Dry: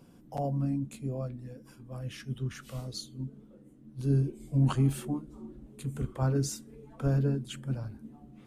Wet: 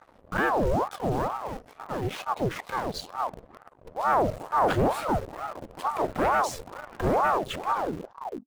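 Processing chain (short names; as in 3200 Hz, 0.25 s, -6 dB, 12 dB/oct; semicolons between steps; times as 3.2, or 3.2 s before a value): tape stop at the end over 0.78 s; tone controls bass -4 dB, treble -14 dB; sample leveller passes 3; in parallel at -7 dB: bit-crush 6-bit; on the sum: ring modulator with a swept carrier 640 Hz, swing 65%, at 2.2 Hz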